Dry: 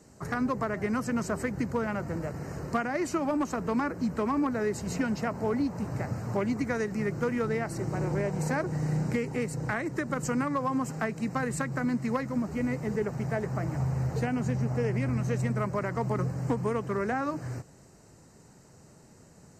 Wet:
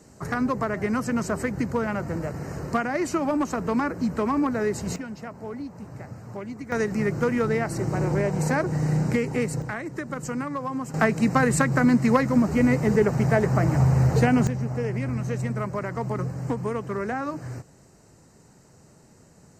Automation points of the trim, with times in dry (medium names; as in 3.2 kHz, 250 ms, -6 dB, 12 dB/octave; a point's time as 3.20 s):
+4 dB
from 4.96 s -6.5 dB
from 6.72 s +5.5 dB
from 9.62 s -1 dB
from 10.94 s +10 dB
from 14.47 s +1 dB